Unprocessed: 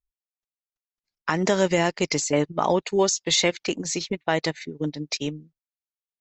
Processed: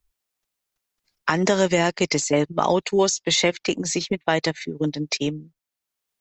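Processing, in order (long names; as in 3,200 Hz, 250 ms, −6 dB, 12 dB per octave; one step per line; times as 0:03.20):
multiband upward and downward compressor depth 40%
level +2 dB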